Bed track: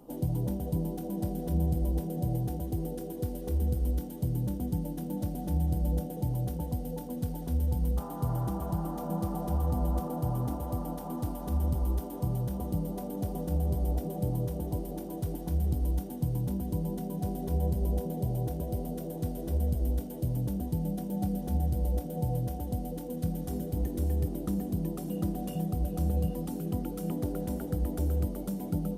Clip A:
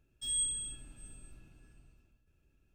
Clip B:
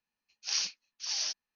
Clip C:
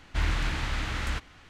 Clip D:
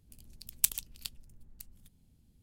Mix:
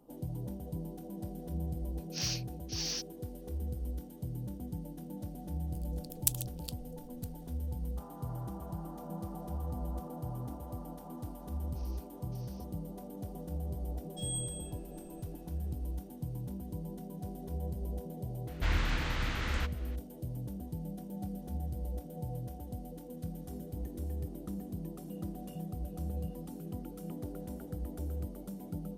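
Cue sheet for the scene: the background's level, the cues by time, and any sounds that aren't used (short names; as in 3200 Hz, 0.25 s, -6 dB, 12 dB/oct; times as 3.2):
bed track -9 dB
1.69 add B -2 dB + soft clip -27.5 dBFS
5.63 add D -2.5 dB + bell 2100 Hz -8 dB 0.9 oct
11.32 add B -16.5 dB + compressor, threshold -45 dBFS
13.95 add A -6 dB
18.47 add C -3.5 dB + LPF 7900 Hz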